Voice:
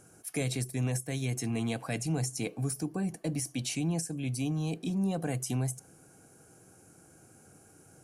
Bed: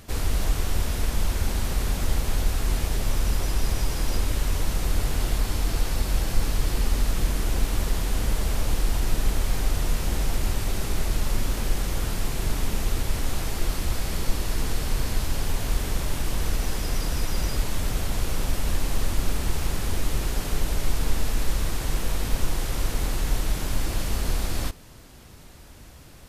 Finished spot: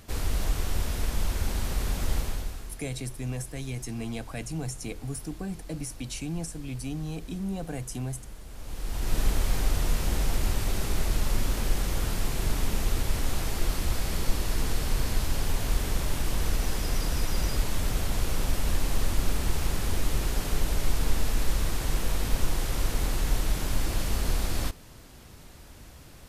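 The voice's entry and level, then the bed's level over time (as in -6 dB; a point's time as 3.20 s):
2.45 s, -2.5 dB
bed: 2.20 s -3.5 dB
2.81 s -19.5 dB
8.48 s -19.5 dB
9.18 s -1.5 dB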